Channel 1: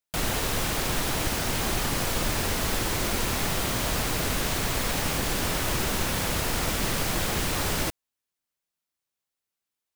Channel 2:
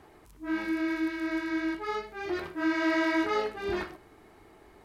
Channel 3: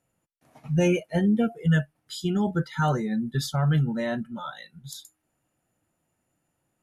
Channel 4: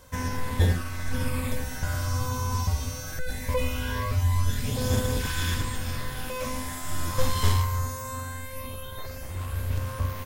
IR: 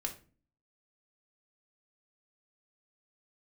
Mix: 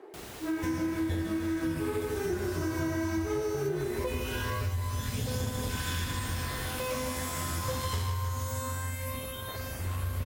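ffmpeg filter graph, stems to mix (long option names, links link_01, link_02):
-filter_complex "[0:a]volume=-17dB[link_01];[1:a]highpass=frequency=390:width_type=q:width=4.5,highshelf=frequency=3900:gain=-8,volume=-0.5dB,asplit=2[link_02][link_03];[link_03]volume=-5dB[link_04];[2:a]asubboost=boost=9.5:cutoff=150,volume=-16.5dB[link_05];[3:a]adelay=500,volume=1dB,asplit=2[link_06][link_07];[link_07]volume=-8.5dB[link_08];[link_04][link_08]amix=inputs=2:normalize=0,aecho=0:1:153|306|459|612|765|918|1071|1224:1|0.56|0.314|0.176|0.0983|0.0551|0.0308|0.0173[link_09];[link_01][link_02][link_05][link_06][link_09]amix=inputs=5:normalize=0,highpass=56,acompressor=threshold=-29dB:ratio=6"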